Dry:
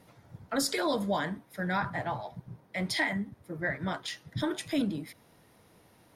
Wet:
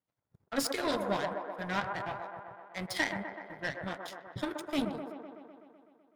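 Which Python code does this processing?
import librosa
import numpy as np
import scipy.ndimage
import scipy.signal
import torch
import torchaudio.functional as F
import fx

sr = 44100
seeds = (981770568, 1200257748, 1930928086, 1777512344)

y = fx.power_curve(x, sr, exponent=2.0)
y = fx.echo_wet_bandpass(y, sr, ms=126, feedback_pct=70, hz=720.0, wet_db=-3.5)
y = y * 10.0 ** (3.0 / 20.0)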